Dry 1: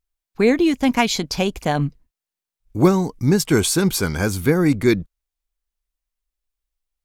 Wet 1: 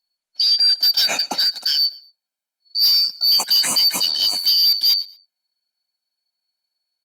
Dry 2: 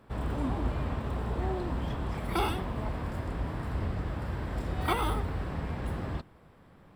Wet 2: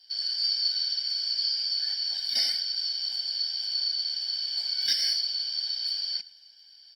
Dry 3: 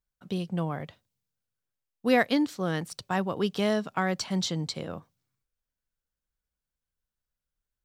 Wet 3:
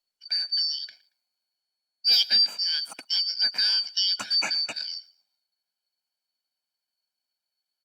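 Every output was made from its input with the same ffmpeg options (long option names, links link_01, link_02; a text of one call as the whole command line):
ffmpeg -i in.wav -af "afftfilt=real='real(if(lt(b,272),68*(eq(floor(b/68),0)*3+eq(floor(b/68),1)*2+eq(floor(b/68),2)*1+eq(floor(b/68),3)*0)+mod(b,68),b),0)':imag='imag(if(lt(b,272),68*(eq(floor(b/68),0)*3+eq(floor(b/68),1)*2+eq(floor(b/68),2)*1+eq(floor(b/68),3)*0)+mod(b,68),b),0)':win_size=2048:overlap=0.75,highpass=frequency=210:width=0.5412,highpass=frequency=210:width=1.3066,highshelf=frequency=4100:gain=-3.5,aecho=1:1:1.3:0.67,adynamicequalizer=threshold=0.00891:dfrequency=1800:dqfactor=2.4:tfrequency=1800:tqfactor=2.4:attack=5:release=100:ratio=0.375:range=2:mode=cutabove:tftype=bell,asoftclip=type=hard:threshold=-14.5dB,aecho=1:1:114|228:0.0794|0.0222,volume=2dB" -ar 48000 -c:a libopus -b:a 32k out.opus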